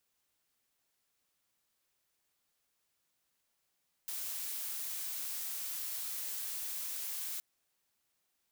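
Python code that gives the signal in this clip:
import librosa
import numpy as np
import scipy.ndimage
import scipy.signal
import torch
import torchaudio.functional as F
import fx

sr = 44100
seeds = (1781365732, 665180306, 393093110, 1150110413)

y = fx.noise_colour(sr, seeds[0], length_s=3.32, colour='blue', level_db=-39.5)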